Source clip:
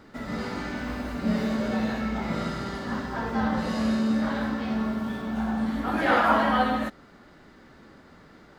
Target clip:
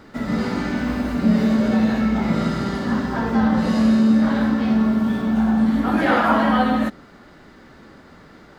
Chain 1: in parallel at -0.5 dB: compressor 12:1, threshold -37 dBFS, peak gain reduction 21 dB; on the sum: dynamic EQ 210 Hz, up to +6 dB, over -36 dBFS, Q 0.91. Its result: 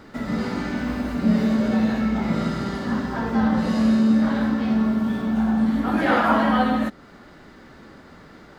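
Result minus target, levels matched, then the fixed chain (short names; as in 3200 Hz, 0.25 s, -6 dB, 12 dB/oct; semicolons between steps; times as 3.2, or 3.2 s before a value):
compressor: peak gain reduction +9.5 dB
in parallel at -0.5 dB: compressor 12:1, threshold -26.5 dBFS, peak gain reduction 11 dB; on the sum: dynamic EQ 210 Hz, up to +6 dB, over -36 dBFS, Q 0.91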